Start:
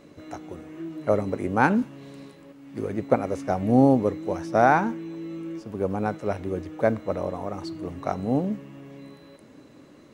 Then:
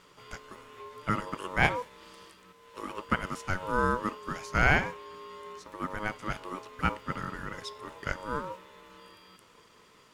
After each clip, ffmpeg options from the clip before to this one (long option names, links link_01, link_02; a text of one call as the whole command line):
ffmpeg -i in.wav -af "tiltshelf=frequency=670:gain=-8,aeval=exprs='val(0)*sin(2*PI*740*n/s)':channel_layout=same,volume=-3dB" out.wav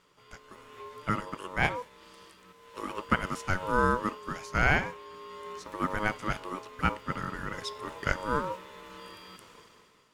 ffmpeg -i in.wav -af "dynaudnorm=framelen=150:gausssize=9:maxgain=14.5dB,volume=-7.5dB" out.wav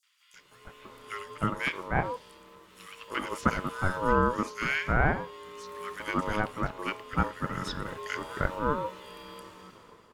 ffmpeg -i in.wav -filter_complex "[0:a]acrossover=split=1700|5900[link_01][link_02][link_03];[link_02]adelay=30[link_04];[link_01]adelay=340[link_05];[link_05][link_04][link_03]amix=inputs=3:normalize=0,volume=2dB" out.wav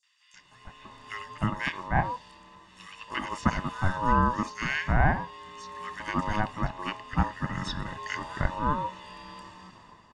ffmpeg -i in.wav -af "lowpass=frequency=7800:width=0.5412,lowpass=frequency=7800:width=1.3066,aecho=1:1:1.1:0.69" out.wav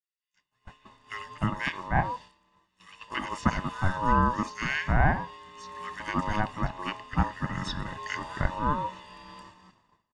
ffmpeg -i in.wav -af "agate=range=-33dB:threshold=-41dB:ratio=3:detection=peak" out.wav